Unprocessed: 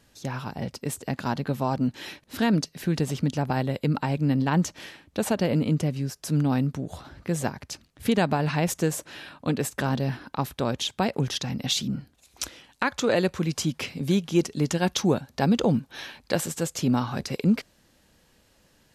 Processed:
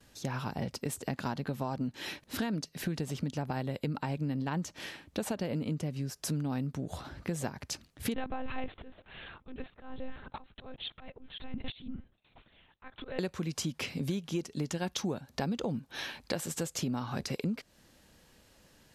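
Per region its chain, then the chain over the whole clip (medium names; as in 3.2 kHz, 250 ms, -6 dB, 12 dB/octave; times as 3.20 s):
8.14–13.19 s: slow attack 695 ms + monotone LPC vocoder at 8 kHz 260 Hz
whole clip: gate with hold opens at -54 dBFS; compression 6:1, threshold -31 dBFS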